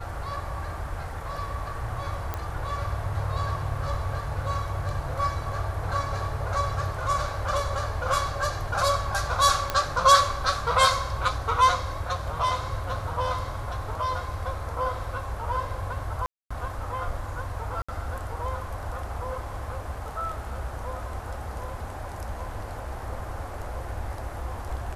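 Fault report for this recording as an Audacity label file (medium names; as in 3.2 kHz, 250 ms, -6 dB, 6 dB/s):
2.340000	2.340000	pop -16 dBFS
9.700000	9.700000	pop -10 dBFS
16.260000	16.500000	dropout 245 ms
17.820000	17.890000	dropout 65 ms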